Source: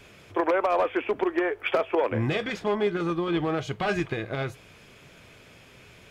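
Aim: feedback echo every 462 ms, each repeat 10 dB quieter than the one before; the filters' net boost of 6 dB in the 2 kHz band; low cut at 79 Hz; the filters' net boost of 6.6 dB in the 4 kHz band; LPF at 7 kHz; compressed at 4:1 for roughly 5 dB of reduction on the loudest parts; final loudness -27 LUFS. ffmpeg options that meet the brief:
-af "highpass=79,lowpass=7000,equalizer=f=2000:t=o:g=6,equalizer=f=4000:t=o:g=6.5,acompressor=threshold=0.0562:ratio=4,aecho=1:1:462|924|1386|1848:0.316|0.101|0.0324|0.0104,volume=1.26"

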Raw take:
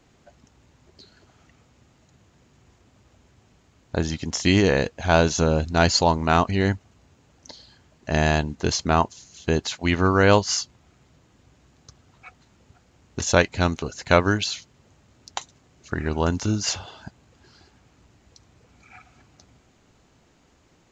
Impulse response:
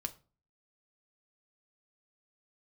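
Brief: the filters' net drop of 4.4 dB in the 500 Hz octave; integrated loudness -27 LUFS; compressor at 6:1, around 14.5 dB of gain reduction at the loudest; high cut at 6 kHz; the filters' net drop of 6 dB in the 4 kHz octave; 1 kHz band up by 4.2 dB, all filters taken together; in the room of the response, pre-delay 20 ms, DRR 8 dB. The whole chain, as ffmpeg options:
-filter_complex "[0:a]lowpass=6000,equalizer=f=500:t=o:g=-8.5,equalizer=f=1000:t=o:g=8.5,equalizer=f=4000:t=o:g=-7,acompressor=threshold=0.0447:ratio=6,asplit=2[s0][s1];[1:a]atrim=start_sample=2205,adelay=20[s2];[s1][s2]afir=irnorm=-1:irlink=0,volume=0.447[s3];[s0][s3]amix=inputs=2:normalize=0,volume=1.88"

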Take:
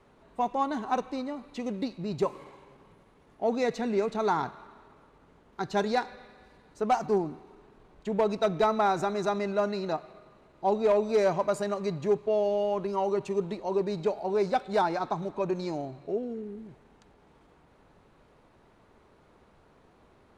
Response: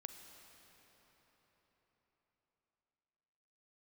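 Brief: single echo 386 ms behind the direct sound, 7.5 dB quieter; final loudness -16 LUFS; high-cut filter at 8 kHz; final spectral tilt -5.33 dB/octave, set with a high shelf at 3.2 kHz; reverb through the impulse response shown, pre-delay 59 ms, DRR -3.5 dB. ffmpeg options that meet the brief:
-filter_complex "[0:a]lowpass=8000,highshelf=f=3200:g=-3,aecho=1:1:386:0.422,asplit=2[s0][s1];[1:a]atrim=start_sample=2205,adelay=59[s2];[s1][s2]afir=irnorm=-1:irlink=0,volume=2.51[s3];[s0][s3]amix=inputs=2:normalize=0,volume=2.51"

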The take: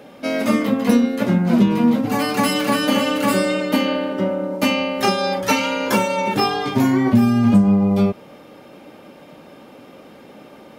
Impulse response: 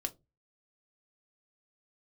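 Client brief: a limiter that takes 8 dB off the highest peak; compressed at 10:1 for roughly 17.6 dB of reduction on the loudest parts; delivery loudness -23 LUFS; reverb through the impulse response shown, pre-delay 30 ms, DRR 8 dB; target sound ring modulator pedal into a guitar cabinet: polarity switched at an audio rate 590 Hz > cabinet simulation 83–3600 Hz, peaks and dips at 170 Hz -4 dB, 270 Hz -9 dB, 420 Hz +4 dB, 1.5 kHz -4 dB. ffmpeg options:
-filter_complex "[0:a]acompressor=threshold=0.0398:ratio=10,alimiter=level_in=1.06:limit=0.0631:level=0:latency=1,volume=0.944,asplit=2[s0][s1];[1:a]atrim=start_sample=2205,adelay=30[s2];[s1][s2]afir=irnorm=-1:irlink=0,volume=0.376[s3];[s0][s3]amix=inputs=2:normalize=0,aeval=exprs='val(0)*sgn(sin(2*PI*590*n/s))':c=same,highpass=83,equalizer=f=170:t=q:w=4:g=-4,equalizer=f=270:t=q:w=4:g=-9,equalizer=f=420:t=q:w=4:g=4,equalizer=f=1500:t=q:w=4:g=-4,lowpass=f=3600:w=0.5412,lowpass=f=3600:w=1.3066,volume=3.16"

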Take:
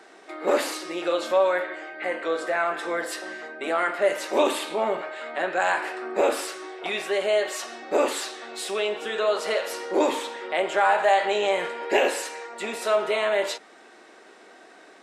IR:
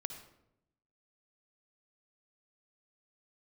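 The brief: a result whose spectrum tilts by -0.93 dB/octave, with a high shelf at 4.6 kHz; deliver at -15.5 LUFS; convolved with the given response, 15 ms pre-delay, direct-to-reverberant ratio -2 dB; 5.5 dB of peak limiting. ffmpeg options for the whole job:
-filter_complex "[0:a]highshelf=f=4600:g=6.5,alimiter=limit=0.2:level=0:latency=1,asplit=2[s0][s1];[1:a]atrim=start_sample=2205,adelay=15[s2];[s1][s2]afir=irnorm=-1:irlink=0,volume=1.5[s3];[s0][s3]amix=inputs=2:normalize=0,volume=2.11"

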